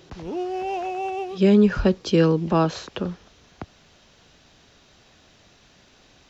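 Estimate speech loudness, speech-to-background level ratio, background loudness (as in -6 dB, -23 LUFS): -20.5 LUFS, 9.0 dB, -29.5 LUFS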